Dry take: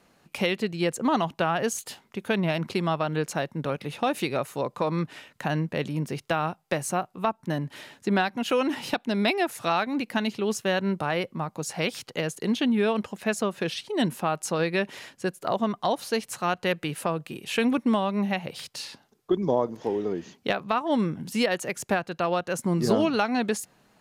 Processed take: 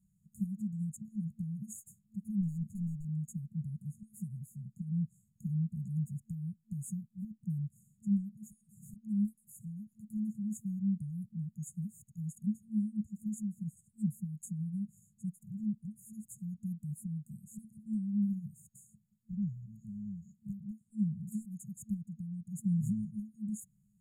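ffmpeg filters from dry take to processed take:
ffmpeg -i in.wav -filter_complex "[0:a]asettb=1/sr,asplit=3[link_01][link_02][link_03];[link_01]atrim=end=2.414[link_04];[link_02]atrim=start=2.41:end=3.05,asetpts=PTS-STARTPTS,afade=type=in:duration=0.004:curve=qsin,afade=type=out:start_time=0.636:duration=0.004:curve=qsin,volume=26.5dB,asoftclip=hard,volume=-26.5dB[link_05];[link_03]atrim=start=3.046[link_06];[link_04][link_05]acrossfade=duration=0.004:curve1=hsin:curve2=qsin[link_07];[link_07][link_06]acrossfade=duration=0.004:curve1=qsin:curve2=hsin,afftfilt=real='re*(1-between(b*sr/4096,220,6600))':imag='im*(1-between(b*sr/4096,220,6600))':win_size=4096:overlap=0.75,highshelf=frequency=2600:gain=-9.5,volume=-3.5dB" out.wav

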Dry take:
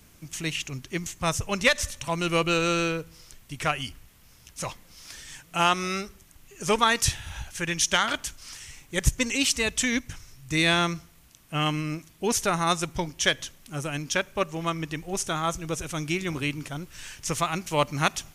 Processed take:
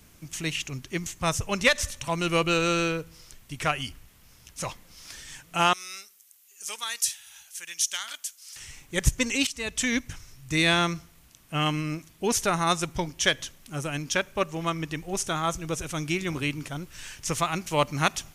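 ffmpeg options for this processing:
ffmpeg -i in.wav -filter_complex "[0:a]asettb=1/sr,asplit=3[link_01][link_02][link_03];[link_01]atrim=end=5.734[link_04];[link_02]atrim=start=5.73:end=8.56,asetpts=PTS-STARTPTS,afade=type=in:duration=0.004:curve=qsin,afade=type=out:start_time=2.826:duration=0.004:curve=qsin,aderivative[link_05];[link_03]atrim=start=8.556[link_06];[link_04][link_05]acrossfade=duration=0.004:curve1=hsin:curve2=qsin[link_07];[link_07][link_06]acrossfade=duration=0.004:curve1=qsin:curve2=hsin,asplit=2[link_08][link_09];[link_08]atrim=end=9.47,asetpts=PTS-STARTPTS,afade=type=out:start_time=9.466:duration=0.004:curve=hsin:silence=0.16788[link_10];[link_09]atrim=start=9.47,asetpts=PTS-STARTPTS,afade=type=in:duration=0.44:silence=0.16788[link_11];[link_10][link_11]concat=n=2:v=0:a=1" out.wav

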